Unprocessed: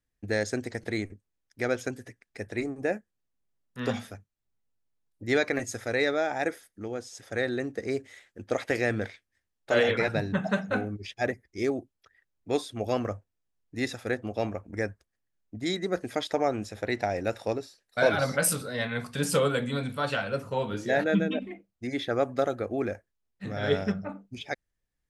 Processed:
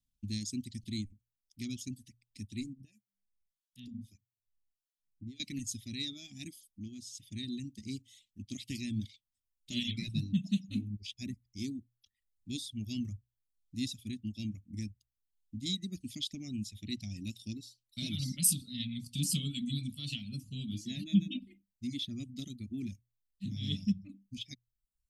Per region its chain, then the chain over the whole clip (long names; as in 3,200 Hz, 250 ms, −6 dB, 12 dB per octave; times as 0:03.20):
0:02.73–0:05.40: mains-hum notches 50/100/150/200/250 Hz + downward compressor 8 to 1, threshold −33 dBFS + two-band tremolo in antiphase 1.6 Hz, depth 100%, crossover 1,000 Hz
whole clip: elliptic band-stop filter 240–3,100 Hz, stop band 40 dB; mains-hum notches 60/120 Hz; reverb reduction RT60 0.67 s